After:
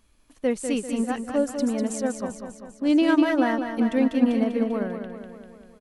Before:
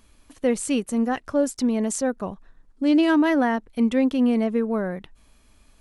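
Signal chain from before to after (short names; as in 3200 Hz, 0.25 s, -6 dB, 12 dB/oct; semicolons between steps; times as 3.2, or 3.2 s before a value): feedback echo 0.197 s, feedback 58%, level -5.5 dB; upward expander 1.5:1, over -27 dBFS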